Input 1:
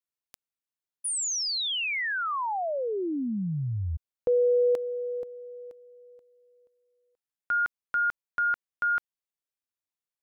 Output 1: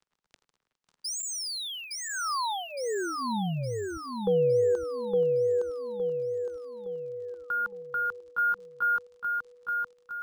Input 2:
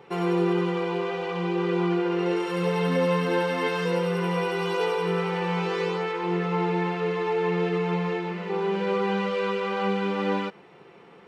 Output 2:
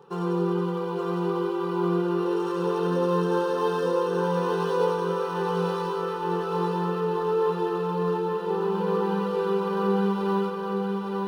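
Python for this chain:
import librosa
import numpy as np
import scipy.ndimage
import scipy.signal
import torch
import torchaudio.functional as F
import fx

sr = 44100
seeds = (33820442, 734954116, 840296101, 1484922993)

p1 = fx.dmg_crackle(x, sr, seeds[0], per_s=58.0, level_db=-48.0)
p2 = fx.fixed_phaser(p1, sr, hz=430.0, stages=8)
p3 = p2 + fx.echo_feedback(p2, sr, ms=863, feedback_pct=47, wet_db=-3, dry=0)
y = np.interp(np.arange(len(p3)), np.arange(len(p3))[::3], p3[::3])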